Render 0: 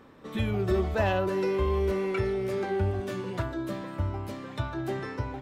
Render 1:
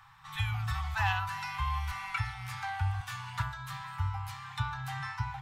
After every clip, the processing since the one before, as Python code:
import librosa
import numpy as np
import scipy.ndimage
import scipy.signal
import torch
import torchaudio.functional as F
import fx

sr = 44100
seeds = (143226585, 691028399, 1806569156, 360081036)

y = scipy.signal.sosfilt(scipy.signal.cheby1(5, 1.0, [150.0, 800.0], 'bandstop', fs=sr, output='sos'), x)
y = fx.peak_eq(y, sr, hz=63.0, db=-6.5, octaves=1.8)
y = y * librosa.db_to_amplitude(2.5)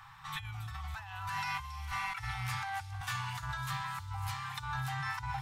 y = fx.over_compress(x, sr, threshold_db=-39.0, ratio=-1.0)
y = fx.echo_wet_highpass(y, sr, ms=276, feedback_pct=62, hz=5400.0, wet_db=-7.0)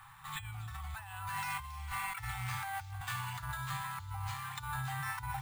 y = np.repeat(scipy.signal.resample_poly(x, 1, 4), 4)[:len(x)]
y = y * librosa.db_to_amplitude(-1.5)